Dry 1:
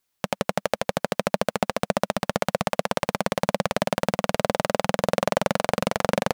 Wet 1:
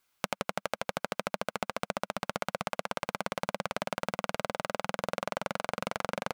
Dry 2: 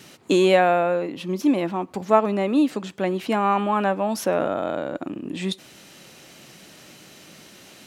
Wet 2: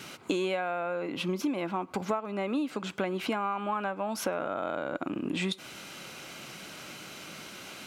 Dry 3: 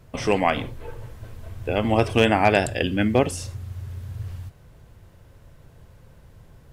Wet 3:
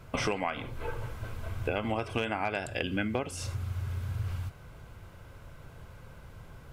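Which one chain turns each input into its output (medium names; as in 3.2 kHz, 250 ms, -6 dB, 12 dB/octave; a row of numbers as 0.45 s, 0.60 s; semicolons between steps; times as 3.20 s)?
peaking EQ 1.6 kHz +9 dB 1.5 oct; band-stop 1.8 kHz, Q 5.3; compression 16:1, threshold -27 dBFS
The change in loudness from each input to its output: -9.5 LU, -11.0 LU, -11.5 LU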